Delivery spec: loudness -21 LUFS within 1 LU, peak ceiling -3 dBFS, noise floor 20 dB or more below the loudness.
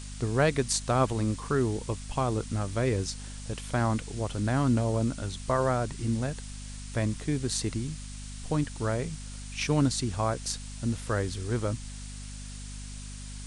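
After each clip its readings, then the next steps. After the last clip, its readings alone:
hum 50 Hz; harmonics up to 250 Hz; hum level -38 dBFS; noise floor -41 dBFS; noise floor target -50 dBFS; loudness -29.5 LUFS; peak -11.0 dBFS; loudness target -21.0 LUFS
-> de-hum 50 Hz, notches 5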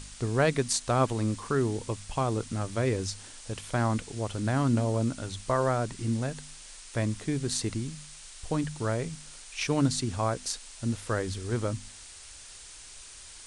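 hum none; noise floor -48 dBFS; noise floor target -50 dBFS
-> noise print and reduce 6 dB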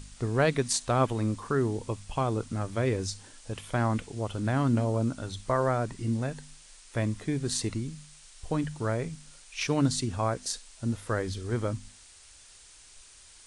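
noise floor -54 dBFS; loudness -30.0 LUFS; peak -10.5 dBFS; loudness target -21.0 LUFS
-> gain +9 dB; limiter -3 dBFS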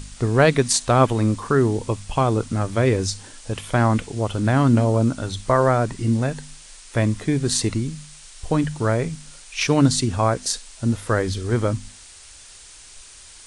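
loudness -21.0 LUFS; peak -3.0 dBFS; noise floor -45 dBFS

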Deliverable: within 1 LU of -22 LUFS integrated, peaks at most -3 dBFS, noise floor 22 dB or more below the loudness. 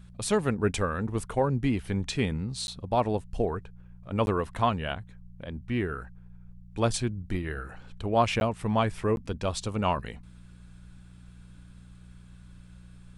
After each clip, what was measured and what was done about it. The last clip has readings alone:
dropouts 4; longest dropout 11 ms; hum 60 Hz; harmonics up to 180 Hz; hum level -45 dBFS; loudness -29.5 LUFS; peak -11.0 dBFS; loudness target -22.0 LUFS
-> interpolate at 2.67/4.26/8.4/9.16, 11 ms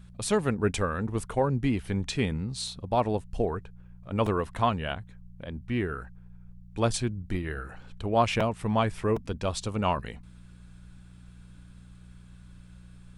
dropouts 0; hum 60 Hz; harmonics up to 180 Hz; hum level -45 dBFS
-> de-hum 60 Hz, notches 3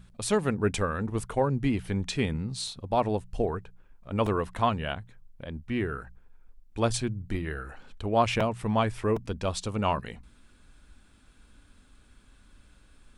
hum none; loudness -29.5 LUFS; peak -11.0 dBFS; loudness target -22.0 LUFS
-> gain +7.5 dB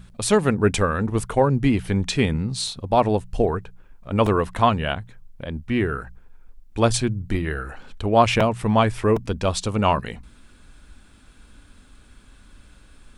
loudness -22.0 LUFS; peak -3.5 dBFS; noise floor -51 dBFS

